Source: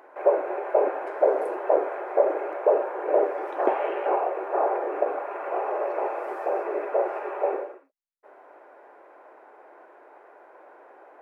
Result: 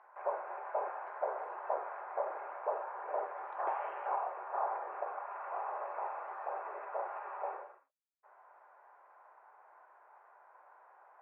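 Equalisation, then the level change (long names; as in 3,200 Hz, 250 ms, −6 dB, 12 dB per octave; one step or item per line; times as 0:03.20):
four-pole ladder band-pass 1,200 Hz, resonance 40%
+1.5 dB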